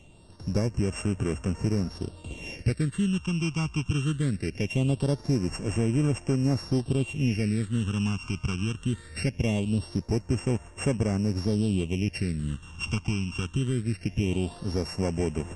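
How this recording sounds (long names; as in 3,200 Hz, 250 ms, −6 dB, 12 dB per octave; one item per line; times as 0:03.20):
a buzz of ramps at a fixed pitch in blocks of 16 samples
phaser sweep stages 8, 0.21 Hz, lowest notch 540–4,100 Hz
Ogg Vorbis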